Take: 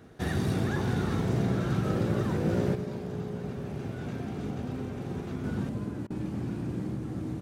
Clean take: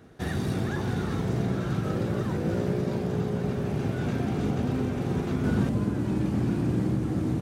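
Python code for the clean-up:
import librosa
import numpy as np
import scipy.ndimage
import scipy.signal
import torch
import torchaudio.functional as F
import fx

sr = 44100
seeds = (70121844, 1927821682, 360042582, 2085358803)

y = fx.fix_interpolate(x, sr, at_s=(6.07,), length_ms=32.0)
y = fx.fix_echo_inverse(y, sr, delay_ms=105, level_db=-14.5)
y = fx.gain(y, sr, db=fx.steps((0.0, 0.0), (2.75, 7.5)))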